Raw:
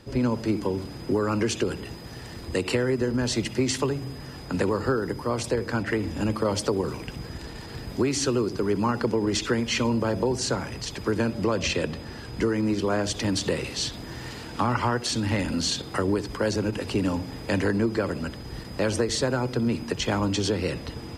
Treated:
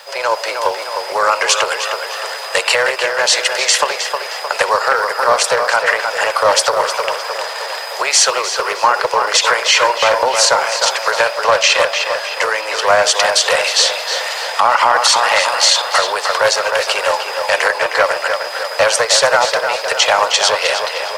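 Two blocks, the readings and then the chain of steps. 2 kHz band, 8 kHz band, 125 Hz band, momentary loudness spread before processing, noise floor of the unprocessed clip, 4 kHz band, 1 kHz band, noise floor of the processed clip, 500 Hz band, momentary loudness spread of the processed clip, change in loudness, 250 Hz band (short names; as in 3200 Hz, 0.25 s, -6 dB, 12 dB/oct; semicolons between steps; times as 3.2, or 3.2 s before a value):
+18.5 dB, +17.0 dB, under -15 dB, 12 LU, -39 dBFS, +17.5 dB, +18.5 dB, -25 dBFS, +10.5 dB, 8 LU, +12.5 dB, -16.0 dB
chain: steep high-pass 560 Hz 48 dB/oct; requantised 12-bit, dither triangular; tape echo 0.309 s, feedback 62%, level -5.5 dB, low-pass 3100 Hz; maximiser +18.5 dB; Doppler distortion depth 0.13 ms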